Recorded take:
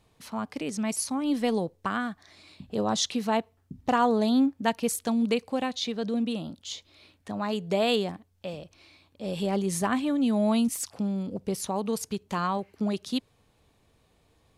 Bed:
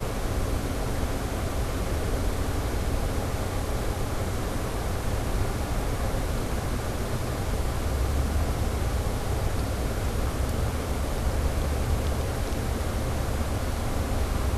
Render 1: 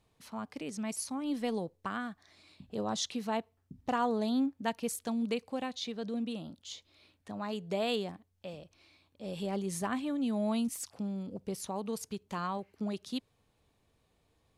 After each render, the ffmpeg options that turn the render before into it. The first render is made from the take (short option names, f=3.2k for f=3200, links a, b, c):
-af "volume=-7.5dB"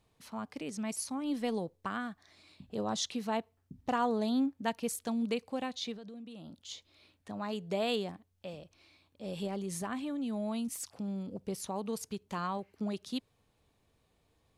-filter_complex "[0:a]asettb=1/sr,asplit=3[a][b][c];[a]atrim=end=5.954[d];[b]atrim=start=5.95:end=6.69,asetpts=PTS-STARTPTS,afade=t=in:d=0.004:c=qsin,afade=t=out:st=0.736:d=0.004:c=qsin,acompressor=threshold=-44dB:ratio=8:attack=3.2:release=140:knee=1:detection=peak[e];[c]atrim=start=6.686[f];[d][e]acrossfade=d=0.004:c1=hsin:c2=qsin[g];[g][f]acrossfade=d=0.004:c1=qsin:c2=hsin,asettb=1/sr,asplit=3[h][i][j];[h]atrim=end=9.474[k];[i]atrim=start=9.47:end=11.08,asetpts=PTS-STARTPTS,afade=t=in:d=0.004:c=qsin,afade=t=out:st=1.606:d=0.004:c=qsin,acompressor=threshold=-35dB:ratio=2:attack=3.2:release=140:knee=1:detection=peak[l];[j]atrim=start=11.076[m];[k][l]acrossfade=d=0.004:c1=hsin:c2=qsin[n];[n][m]acrossfade=d=0.004:c1=qsin:c2=hsin"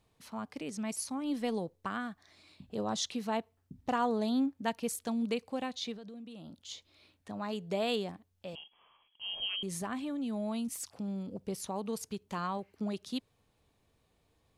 -filter_complex "[0:a]asettb=1/sr,asplit=3[a][b][c];[a]atrim=end=8.554[d];[b]atrim=start=8.55:end=9.63,asetpts=PTS-STARTPTS,afade=t=in:d=0.004:c=qsin,afade=t=out:st=1.076:d=0.004:c=qsin,lowpass=f=2.9k:t=q:w=0.5098,lowpass=f=2.9k:t=q:w=0.6013,lowpass=f=2.9k:t=q:w=0.9,lowpass=f=2.9k:t=q:w=2.563,afreqshift=-3400[e];[c]atrim=start=9.626[f];[d][e]acrossfade=d=0.004:c1=hsin:c2=qsin[g];[g][f]acrossfade=d=0.004:c1=qsin:c2=hsin"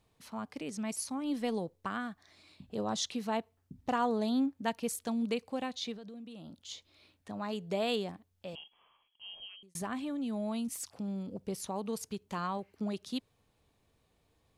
-filter_complex "[0:a]asplit=2[a][b];[a]atrim=end=9.75,asetpts=PTS-STARTPTS,afade=t=out:st=8.62:d=1.13[c];[b]atrim=start=9.75,asetpts=PTS-STARTPTS,afade=t=in:d=0.004:c=hsin[d];[c][d]concat=n=2:v=0:a=1"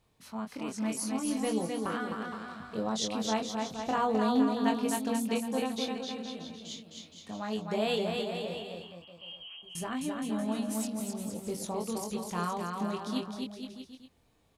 -filter_complex "[0:a]asplit=2[a][b];[b]adelay=23,volume=-4dB[c];[a][c]amix=inputs=2:normalize=0,aecho=1:1:260|468|634.4|767.5|874:0.631|0.398|0.251|0.158|0.1"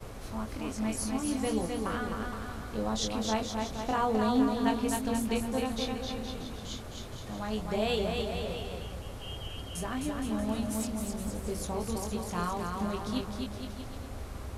-filter_complex "[1:a]volume=-14dB[a];[0:a][a]amix=inputs=2:normalize=0"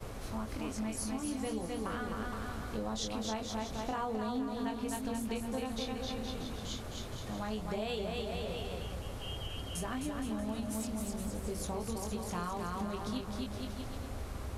-af "acompressor=threshold=-34dB:ratio=4"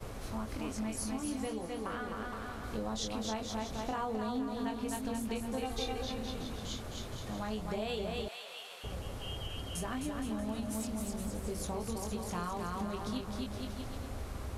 -filter_complex "[0:a]asettb=1/sr,asplit=3[a][b][c];[a]atrim=end=1.464[d];[b]atrim=start=1.46:end=2.64,asetpts=PTS-STARTPTS,afade=t=in:d=0.004:c=qsin,afade=t=out:st=1.176:d=0.004:c=qsin,bass=f=250:g=-5,treble=f=4k:g=-4[e];[c]atrim=start=2.636[f];[d][e]acrossfade=d=0.004:c1=hsin:c2=qsin[g];[g][f]acrossfade=d=0.004:c1=qsin:c2=hsin,asettb=1/sr,asplit=3[h][i][j];[h]atrim=end=5.634[k];[i]atrim=start=5.63:end=6.03,asetpts=PTS-STARTPTS,afade=t=in:d=0.004:c=qsin,afade=t=out:st=0.396:d=0.004:c=qsin,aecho=1:1:2.5:0.76,atrim=end_sample=17640[l];[j]atrim=start=6.026[m];[k][l]acrossfade=d=0.004:c1=hsin:c2=qsin[n];[n][m]acrossfade=d=0.004:c1=qsin:c2=hsin,asettb=1/sr,asplit=3[o][p][q];[o]atrim=end=8.284[r];[p]atrim=start=8.28:end=8.84,asetpts=PTS-STARTPTS,afade=t=in:d=0.004:c=qsin,afade=t=out:st=0.556:d=0.004:c=qsin,highpass=1.1k[s];[q]atrim=start=8.836[t];[r][s]acrossfade=d=0.004:c1=hsin:c2=qsin[u];[u][t]acrossfade=d=0.004:c1=qsin:c2=hsin"